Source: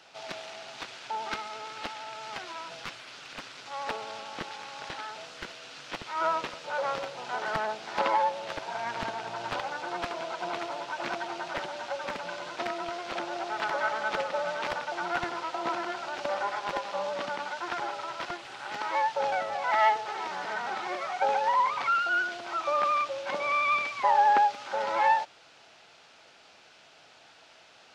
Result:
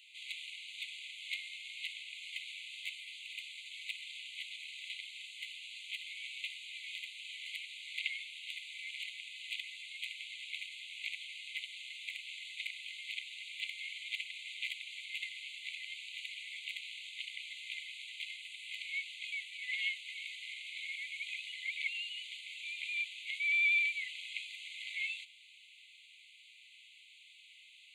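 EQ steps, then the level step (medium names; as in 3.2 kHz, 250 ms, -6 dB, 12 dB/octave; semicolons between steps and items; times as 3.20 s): brick-wall FIR high-pass 2 kHz; Butterworth band-stop 5.4 kHz, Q 1.7; +1.5 dB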